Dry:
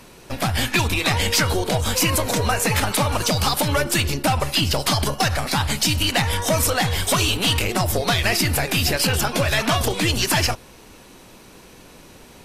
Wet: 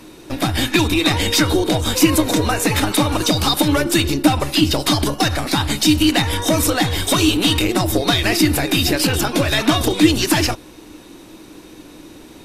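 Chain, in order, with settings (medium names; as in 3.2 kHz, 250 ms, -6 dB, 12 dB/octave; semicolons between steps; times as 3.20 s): small resonant body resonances 310/3700 Hz, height 16 dB, ringing for 75 ms; trim +1 dB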